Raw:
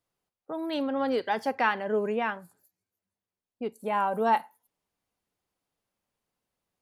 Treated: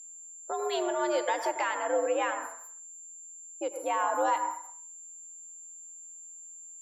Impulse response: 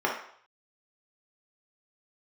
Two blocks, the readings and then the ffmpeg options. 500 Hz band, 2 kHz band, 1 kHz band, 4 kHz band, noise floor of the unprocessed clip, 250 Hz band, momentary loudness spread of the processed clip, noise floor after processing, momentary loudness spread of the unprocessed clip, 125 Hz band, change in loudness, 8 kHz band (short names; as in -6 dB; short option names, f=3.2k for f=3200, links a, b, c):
0.0 dB, -2.5 dB, -1.0 dB, +0.5 dB, under -85 dBFS, -6.5 dB, 16 LU, -48 dBFS, 12 LU, under -25 dB, -1.5 dB, n/a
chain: -filter_complex "[0:a]asplit=2[a][b];[b]acompressor=threshold=-33dB:ratio=6,volume=0dB[c];[a][c]amix=inputs=2:normalize=0,equalizer=f=170:t=o:w=0.89:g=-11.5,alimiter=limit=-17dB:level=0:latency=1:release=164,aeval=exprs='val(0)+0.00794*sin(2*PI*7200*n/s)':c=same,asplit=2[d][e];[1:a]atrim=start_sample=2205,lowpass=3k,adelay=96[f];[e][f]afir=irnorm=-1:irlink=0,volume=-19dB[g];[d][g]amix=inputs=2:normalize=0,afreqshift=85,volume=-2.5dB"